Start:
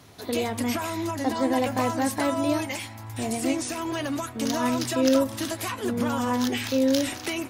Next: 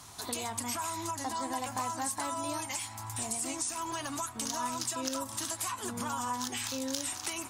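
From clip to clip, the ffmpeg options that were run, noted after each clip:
-af "equalizer=f=125:t=o:w=1:g=-4,equalizer=f=250:t=o:w=1:g=-5,equalizer=f=500:t=o:w=1:g=-10,equalizer=f=1k:t=o:w=1:g=8,equalizer=f=2k:t=o:w=1:g=-4,equalizer=f=8k:t=o:w=1:g=12,acompressor=threshold=-36dB:ratio=2.5"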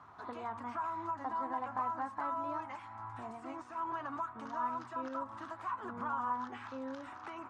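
-af "lowpass=f=1.3k:t=q:w=2.3,lowshelf=f=86:g=-10.5,volume=-5.5dB"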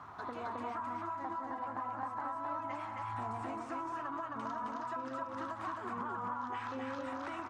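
-filter_complex "[0:a]acompressor=threshold=-45dB:ratio=6,asplit=2[a][b];[b]aecho=0:1:183.7|265.3:0.316|0.794[c];[a][c]amix=inputs=2:normalize=0,volume=6dB"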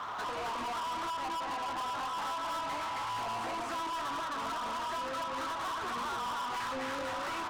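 -filter_complex "[0:a]flanger=delay=8.4:depth=3.3:regen=-46:speed=0.82:shape=triangular,asplit=2[a][b];[b]highpass=f=720:p=1,volume=27dB,asoftclip=type=tanh:threshold=-30dB[c];[a][c]amix=inputs=2:normalize=0,lowpass=f=1.7k:p=1,volume=-6dB,crystalizer=i=3.5:c=0"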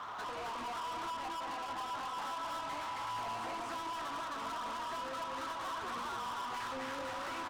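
-af "aecho=1:1:553:0.335,volume=-4.5dB"

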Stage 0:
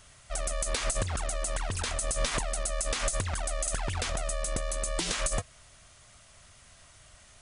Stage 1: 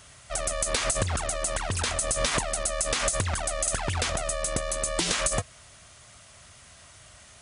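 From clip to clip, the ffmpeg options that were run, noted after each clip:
-af "highpass=59,volume=5dB"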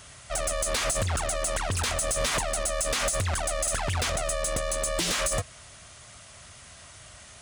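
-af "asoftclip=type=tanh:threshold=-24.5dB,volume=3dB"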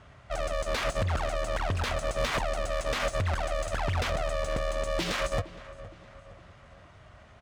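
-af "aecho=1:1:465|930|1395|1860:0.168|0.0806|0.0387|0.0186,adynamicsmooth=sensitivity=2.5:basefreq=1.7k"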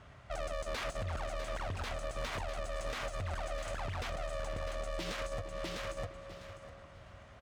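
-filter_complex "[0:a]asplit=2[a][b];[b]aecho=0:1:652|1304|1956:0.398|0.0796|0.0159[c];[a][c]amix=inputs=2:normalize=0,alimiter=level_in=4.5dB:limit=-24dB:level=0:latency=1:release=246,volume=-4.5dB,volume=-2.5dB"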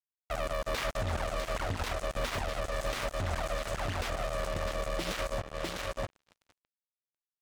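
-af "acrusher=bits=5:mix=0:aa=0.5,volume=4dB"

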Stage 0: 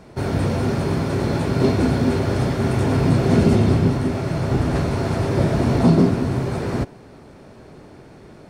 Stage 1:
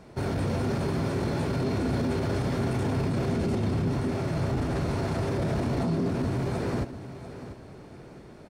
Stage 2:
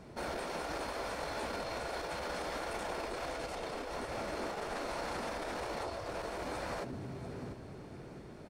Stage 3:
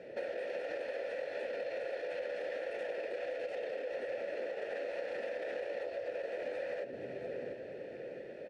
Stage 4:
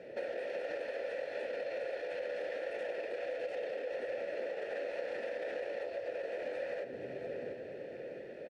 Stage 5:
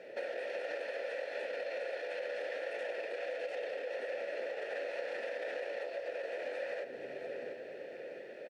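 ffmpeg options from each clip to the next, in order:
-af "alimiter=limit=-15.5dB:level=0:latency=1:release=16,aecho=1:1:693|1386|2079|2772:0.224|0.0806|0.029|0.0104,volume=-5dB"
-af "afftfilt=real='re*lt(hypot(re,im),0.126)':imag='im*lt(hypot(re,im),0.126)':win_size=1024:overlap=0.75,volume=-2.5dB"
-filter_complex "[0:a]asplit=3[a][b][c];[a]bandpass=f=530:t=q:w=8,volume=0dB[d];[b]bandpass=f=1.84k:t=q:w=8,volume=-6dB[e];[c]bandpass=f=2.48k:t=q:w=8,volume=-9dB[f];[d][e][f]amix=inputs=3:normalize=0,acompressor=threshold=-52dB:ratio=6,volume=16dB"
-filter_complex "[0:a]asplit=2[a][b];[b]adelay=145.8,volume=-13dB,highshelf=f=4k:g=-3.28[c];[a][c]amix=inputs=2:normalize=0"
-af "highpass=f=630:p=1,volume=3dB"

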